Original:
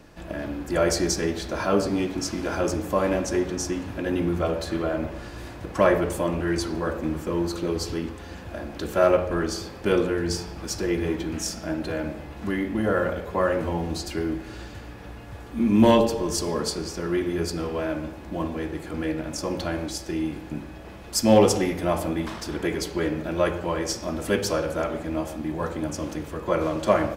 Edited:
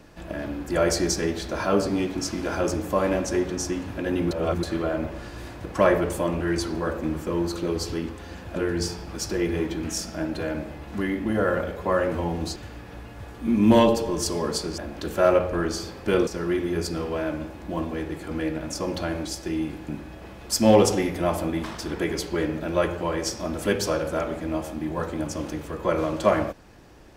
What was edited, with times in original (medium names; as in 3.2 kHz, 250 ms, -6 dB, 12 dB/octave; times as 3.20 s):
4.31–4.63 s: reverse
8.56–10.05 s: move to 16.90 s
14.05–14.68 s: delete